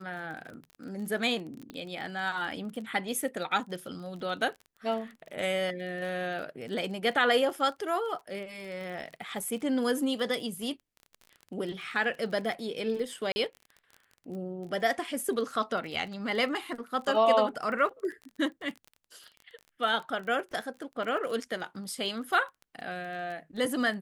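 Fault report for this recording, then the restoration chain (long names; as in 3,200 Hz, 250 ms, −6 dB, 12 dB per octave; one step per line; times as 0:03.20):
surface crackle 25 per second −38 dBFS
0:01.70: click −27 dBFS
0:13.32–0:13.36: drop-out 40 ms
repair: click removal
repair the gap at 0:13.32, 40 ms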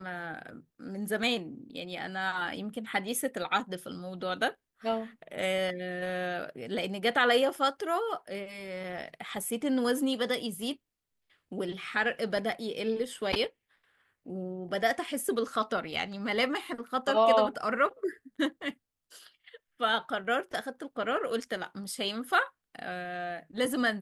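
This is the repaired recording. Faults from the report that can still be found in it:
0:01.70: click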